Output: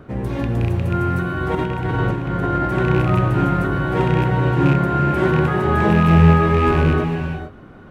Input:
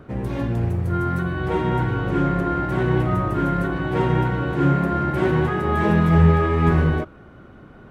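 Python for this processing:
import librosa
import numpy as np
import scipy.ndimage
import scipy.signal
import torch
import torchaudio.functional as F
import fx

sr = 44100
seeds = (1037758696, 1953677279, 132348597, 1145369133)

y = fx.rattle_buzz(x, sr, strikes_db=-16.0, level_db=-21.0)
y = fx.over_compress(y, sr, threshold_db=-23.0, ratio=-0.5, at=(1.55, 2.68))
y = fx.rev_gated(y, sr, seeds[0], gate_ms=480, shape='rising', drr_db=6.0)
y = y * 10.0 ** (2.0 / 20.0)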